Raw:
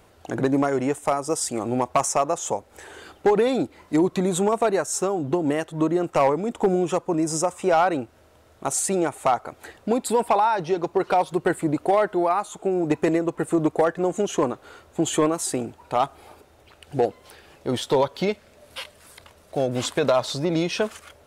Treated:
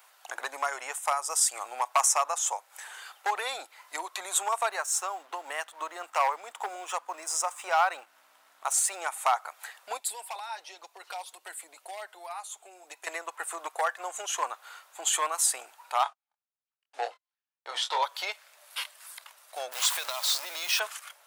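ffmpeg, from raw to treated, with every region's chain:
ffmpeg -i in.wav -filter_complex "[0:a]asettb=1/sr,asplit=3[link_01][link_02][link_03];[link_01]atrim=end=4.704[link_04];[link_02]atrim=start=4.7:end=9,asetpts=PTS-STARTPTS,afade=type=in:duration=0.004:curve=qsin,afade=type=out:start_time=4.296:duration=0.004:curve=qsin,aeval=exprs='val(0)+0.0224*(sin(2*PI*60*n/s)+sin(2*PI*2*60*n/s)/2+sin(2*PI*3*60*n/s)/3+sin(2*PI*4*60*n/s)/4+sin(2*PI*5*60*n/s)/5)':channel_layout=same,aeval=exprs='sgn(val(0))*max(abs(val(0))-0.00299,0)':channel_layout=same,highshelf=frequency=4800:gain=-5[link_05];[link_03]atrim=start=8.996[link_06];[link_04][link_05]acrossfade=duration=0.004:curve1=hsin:curve2=qsin[link_07];[link_07][link_06]acrossfade=duration=0.004:curve1=qsin:curve2=hsin,asettb=1/sr,asplit=3[link_08][link_09][link_10];[link_08]atrim=end=9.974[link_11];[link_09]atrim=start=9.97:end=13.07,asetpts=PTS-STARTPTS,afade=type=in:duration=0.004:curve=qsin,afade=type=out:start_time=3.096:duration=0.004:curve=qsin,equalizer=frequency=1200:width=1.1:gain=-8.5,acrossover=split=200|3000[link_12][link_13][link_14];[link_13]acompressor=threshold=-28dB:ratio=2:attack=3.2:release=140:knee=2.83:detection=peak[link_15];[link_12][link_15][link_14]amix=inputs=3:normalize=0,flanger=delay=2.9:depth=2.9:regen=-46:speed=1.3:shape=triangular[link_16];[link_10]atrim=start=13.066[link_17];[link_11][link_16]acrossfade=duration=0.004:curve1=hsin:curve2=qsin[link_18];[link_18][link_17]acrossfade=duration=0.004:curve1=qsin:curve2=hsin,asettb=1/sr,asplit=3[link_19][link_20][link_21];[link_19]atrim=end=16.034[link_22];[link_20]atrim=start=16.03:end=18.03,asetpts=PTS-STARTPTS,afade=type=in:duration=0.004:curve=qsin,afade=type=out:start_time=1.996:duration=0.004:curve=qsin,agate=range=-48dB:threshold=-41dB:ratio=16:release=100:detection=peak,highpass=300,lowpass=5800,asplit=2[link_23][link_24];[link_24]adelay=25,volume=-5.5dB[link_25];[link_23][link_25]amix=inputs=2:normalize=0,atrim=end_sample=88200[link_26];[link_21]atrim=start=18.026[link_27];[link_22][link_26]acrossfade=duration=0.004:curve1=hsin:curve2=qsin[link_28];[link_28][link_27]acrossfade=duration=0.004:curve1=qsin:curve2=hsin,asettb=1/sr,asplit=3[link_29][link_30][link_31];[link_29]atrim=end=19.724[link_32];[link_30]atrim=start=19.72:end=20.8,asetpts=PTS-STARTPTS,afade=type=in:duration=0.004:curve=qsin,afade=type=out:start_time=1.076:duration=0.004:curve=qsin,aeval=exprs='val(0)+0.5*0.0316*sgn(val(0))':channel_layout=same,equalizer=frequency=160:width=1.3:gain=-12.5,acrossover=split=240|3000[link_33][link_34][link_35];[link_34]acompressor=threshold=-27dB:ratio=6:attack=3.2:release=140:knee=2.83:detection=peak[link_36];[link_33][link_36][link_35]amix=inputs=3:normalize=0[link_37];[link_31]atrim=start=20.796[link_38];[link_32][link_37]acrossfade=duration=0.004:curve1=hsin:curve2=qsin[link_39];[link_39][link_38]acrossfade=duration=0.004:curve1=qsin:curve2=hsin,highpass=frequency=860:width=0.5412,highpass=frequency=860:width=1.3066,highshelf=frequency=11000:gain=11" out.wav

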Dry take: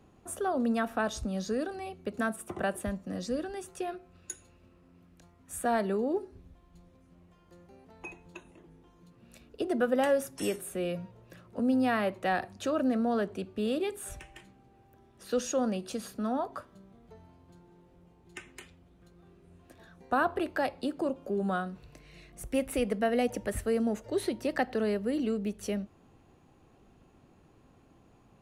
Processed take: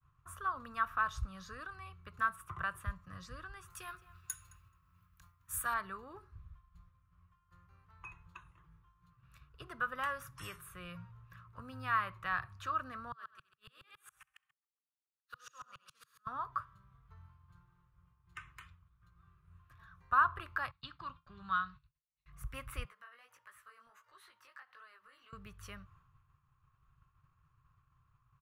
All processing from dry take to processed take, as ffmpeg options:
ffmpeg -i in.wav -filter_complex "[0:a]asettb=1/sr,asplit=3[link_01][link_02][link_03];[link_01]atrim=end=3.704[link_04];[link_02]atrim=start=3.7:end=5.74,asetpts=PTS-STARTPTS,afade=type=in:duration=0.004:curve=qsin,afade=type=out:start_time=2.036:duration=0.004:curve=qsin,aemphasis=mode=production:type=75kf,asplit=2[link_05][link_06];[link_06]adelay=215,lowpass=frequency=4200:poles=1,volume=-18dB,asplit=2[link_07][link_08];[link_08]adelay=215,lowpass=frequency=4200:poles=1,volume=0.3,asplit=2[link_09][link_10];[link_10]adelay=215,lowpass=frequency=4200:poles=1,volume=0.3[link_11];[link_05][link_07][link_09][link_11]amix=inputs=4:normalize=0,atrim=end_sample=89964[link_12];[link_03]atrim=start=5.736[link_13];[link_04][link_12]acrossfade=duration=0.004:curve1=hsin:curve2=qsin[link_14];[link_14][link_13]acrossfade=duration=0.004:curve1=qsin:curve2=hsin,asettb=1/sr,asplit=3[link_15][link_16][link_17];[link_15]atrim=end=13.124[link_18];[link_16]atrim=start=13.12:end=16.27,asetpts=PTS-STARTPTS,afade=type=in:duration=0.004:curve=qsin,afade=type=out:start_time=3.146:duration=0.004:curve=qsin,highpass=frequency=1500:poles=1,aecho=1:1:66|132|198|264|330|396|462:0.631|0.334|0.177|0.0939|0.0498|0.0264|0.014,atrim=end_sample=138915,aeval=exprs='val(0)*pow(10,-33*if(lt(mod(-7.2*n/s,1),2*abs(-7.2)/1000),1-mod(-7.2*n/s,1)/(2*abs(-7.2)/1000),(mod(-7.2*n/s,1)-2*abs(-7.2)/1000)/(1-2*abs(-7.2)/1000))/20)':channel_layout=same[link_19];[link_17]atrim=start=16.266[link_20];[link_18][link_19]acrossfade=duration=0.004:curve1=hsin:curve2=qsin[link_21];[link_21][link_20]acrossfade=duration=0.004:curve1=qsin:curve2=hsin,asettb=1/sr,asplit=3[link_22][link_23][link_24];[link_22]atrim=end=20.714[link_25];[link_23]atrim=start=20.71:end=22.26,asetpts=PTS-STARTPTS,afade=type=in:duration=0.004:curve=qsin,afade=type=out:start_time=1.546:duration=0.004:curve=qsin,agate=range=-33dB:threshold=-41dB:ratio=3:release=100:detection=peak,lowpass=frequency=4000:width_type=q:width=3.6,equalizer=frequency=490:width_type=o:width=0.82:gain=-14[link_26];[link_24]atrim=start=22.256[link_27];[link_25][link_26]acrossfade=duration=0.004:curve1=hsin:curve2=qsin[link_28];[link_28][link_27]acrossfade=duration=0.004:curve1=qsin:curve2=hsin,asettb=1/sr,asplit=3[link_29][link_30][link_31];[link_29]atrim=end=22.854[link_32];[link_30]atrim=start=22.85:end=25.33,asetpts=PTS-STARTPTS,afade=type=in:duration=0.004:curve=qsin,afade=type=out:start_time=2.476:duration=0.004:curve=qsin,highpass=650,acompressor=threshold=-47dB:ratio=3:attack=3.2:release=140:knee=1:detection=peak,flanger=delay=15.5:depth=6:speed=1.5[link_33];[link_31]atrim=start=25.326[link_34];[link_32][link_33]acrossfade=duration=0.004:curve1=hsin:curve2=qsin[link_35];[link_35][link_34]acrossfade=duration=0.004:curve1=qsin:curve2=hsin,agate=range=-33dB:threshold=-53dB:ratio=3:detection=peak,firequalizer=gain_entry='entry(140,0);entry(210,-28);entry(760,-22);entry(1100,5);entry(1900,-7);entry(4400,-13);entry(8700,-17);entry(14000,-8)':delay=0.05:min_phase=1,volume=2dB" out.wav

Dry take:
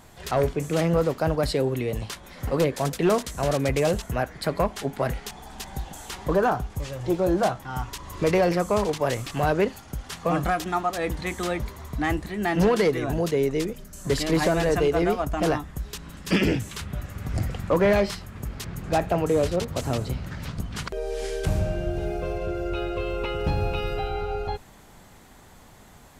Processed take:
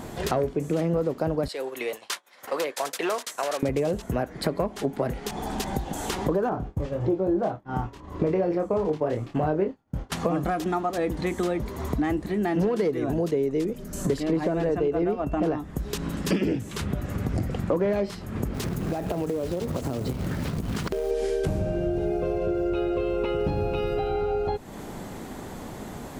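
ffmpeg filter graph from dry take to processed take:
ffmpeg -i in.wav -filter_complex "[0:a]asettb=1/sr,asplit=3[link_01][link_02][link_03];[link_01]atrim=end=1.484[link_04];[link_02]atrim=start=1.48:end=3.63,asetpts=PTS-STARTPTS,afade=type=in:duration=0.004:curve=qsin,afade=type=out:start_time=2.146:duration=0.004:curve=qsin,highpass=1000,agate=range=-33dB:threshold=-38dB:ratio=3:release=100:detection=peak[link_05];[link_03]atrim=start=3.626[link_06];[link_04][link_05]acrossfade=duration=0.004:curve1=hsin:curve2=qsin[link_07];[link_07][link_06]acrossfade=duration=0.004:curve1=qsin:curve2=hsin,asettb=1/sr,asplit=3[link_08][link_09][link_10];[link_08]atrim=end=6.494[link_11];[link_09]atrim=start=6.49:end=10.12,asetpts=PTS-STARTPTS,afade=type=in:duration=0.004:curve=qsin,afade=type=out:start_time=3.626:duration=0.004:curve=qsin,lowpass=frequency=1700:poles=1,agate=range=-33dB:threshold=-31dB:ratio=3:release=100:detection=peak,asplit=2[link_12][link_13];[link_13]adelay=26,volume=-6dB[link_14];[link_12][link_14]amix=inputs=2:normalize=0,atrim=end_sample=160083[link_15];[link_10]atrim=start=10.116[link_16];[link_11][link_15]acrossfade=duration=0.004:curve1=hsin:curve2=qsin[link_17];[link_17][link_16]acrossfade=duration=0.004:curve1=qsin:curve2=hsin,asettb=1/sr,asplit=3[link_18][link_19][link_20];[link_18]atrim=end=14.204[link_21];[link_19]atrim=start=14.2:end=15.58,asetpts=PTS-STARTPTS,afade=type=in:duration=0.004:curve=qsin,afade=type=out:start_time=1.376:duration=0.004:curve=qsin,highshelf=frequency=4800:gain=-12,aeval=exprs='val(0)+0.00355*sin(2*PI*2700*n/s)':channel_layout=same[link_22];[link_20]atrim=start=15.576[link_23];[link_21][link_22]acrossfade=duration=0.004:curve1=hsin:curve2=qsin[link_24];[link_24][link_23]acrossfade=duration=0.004:curve1=qsin:curve2=hsin,asettb=1/sr,asplit=3[link_25][link_26][link_27];[link_25]atrim=end=18.544[link_28];[link_26]atrim=start=18.54:end=21.11,asetpts=PTS-STARTPTS,afade=type=in:duration=0.004:curve=qsin,afade=type=out:start_time=2.566:duration=0.004:curve=qsin,acompressor=threshold=-31dB:ratio=16:attack=3.2:release=140:knee=1:detection=peak,acrusher=bits=3:mode=log:mix=0:aa=0.000001[link_29];[link_27]atrim=start=21.106[link_30];[link_28][link_29]acrossfade=duration=0.004:curve1=hsin:curve2=qsin[link_31];[link_31][link_30]acrossfade=duration=0.004:curve1=qsin:curve2=hsin,equalizer=frequency=310:width=0.51:gain=11,acompressor=threshold=-33dB:ratio=4,volume=7dB" out.wav

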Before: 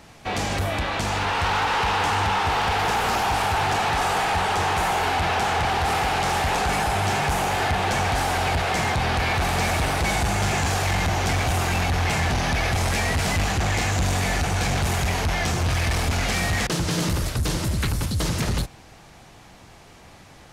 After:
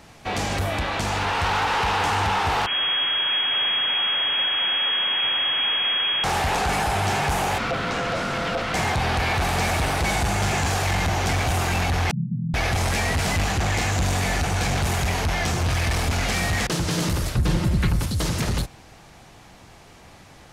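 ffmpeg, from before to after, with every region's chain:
ffmpeg -i in.wav -filter_complex "[0:a]asettb=1/sr,asplit=3[link_01][link_02][link_03];[link_01]atrim=end=2.664[link_04];[link_02]atrim=start=2.66:end=6.24,asetpts=PTS-STARTPTS,afade=type=in:duration=0.004:curve=qsin,afade=type=out:start_time=3.576:duration=0.004:curve=qsin,aeval=exprs='abs(val(0))':channel_layout=same,lowpass=frequency=2800:width_type=q:width=0.5098,lowpass=frequency=2800:width_type=q:width=0.6013,lowpass=frequency=2800:width_type=q:width=0.9,lowpass=frequency=2800:width_type=q:width=2.563,afreqshift=-3300[link_05];[link_03]atrim=start=6.236[link_06];[link_04][link_05]acrossfade=duration=0.004:curve1=hsin:curve2=qsin[link_07];[link_07][link_06]acrossfade=duration=0.004:curve1=qsin:curve2=hsin,asettb=1/sr,asplit=3[link_08][link_09][link_10];[link_08]atrim=end=7.584[link_11];[link_09]atrim=start=7.58:end=8.74,asetpts=PTS-STARTPTS,afade=type=in:duration=0.004:curve=qsin,afade=type=out:start_time=1.156:duration=0.004:curve=qsin,acrossover=split=6600[link_12][link_13];[link_13]acompressor=threshold=-53dB:ratio=4:attack=1:release=60[link_14];[link_12][link_14]amix=inputs=2:normalize=0,aeval=exprs='val(0)*sin(2*PI*600*n/s)':channel_layout=same[link_15];[link_10]atrim=start=8.736[link_16];[link_11][link_15]acrossfade=duration=0.004:curve1=hsin:curve2=qsin[link_17];[link_17][link_16]acrossfade=duration=0.004:curve1=qsin:curve2=hsin,asettb=1/sr,asplit=3[link_18][link_19][link_20];[link_18]atrim=end=12.114[link_21];[link_19]atrim=start=12.11:end=12.54,asetpts=PTS-STARTPTS,afade=type=in:duration=0.004:curve=qsin,afade=type=out:start_time=0.426:duration=0.004:curve=qsin,asuperpass=centerf=170:order=20:qfactor=1.1,aecho=1:1:5.8:0.96,atrim=end_sample=18963,acompressor=mode=upward:threshold=-33dB:ratio=2.5:attack=3.2:release=140:knee=2.83:detection=peak[link_22];[link_20]atrim=start=12.536[link_23];[link_21][link_22]acrossfade=duration=0.004:curve1=hsin:curve2=qsin[link_24];[link_24][link_23]acrossfade=duration=0.004:curve1=qsin:curve2=hsin,asettb=1/sr,asplit=3[link_25][link_26][link_27];[link_25]atrim=end=17.354[link_28];[link_26]atrim=start=17.35:end=18,asetpts=PTS-STARTPTS,afade=type=in:duration=0.004:curve=qsin,afade=type=out:start_time=0.646:duration=0.004:curve=qsin,bass=frequency=250:gain=5,treble=frequency=4000:gain=-8,aecho=1:1:5.6:0.36,atrim=end_sample=28665[link_29];[link_27]atrim=start=17.996[link_30];[link_28][link_29]acrossfade=duration=0.004:curve1=hsin:curve2=qsin[link_31];[link_31][link_30]acrossfade=duration=0.004:curve1=qsin:curve2=hsin" out.wav

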